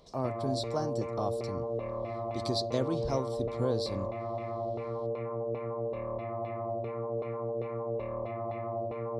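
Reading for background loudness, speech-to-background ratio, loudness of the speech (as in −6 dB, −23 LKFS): −36.0 LKFS, 0.5 dB, −35.5 LKFS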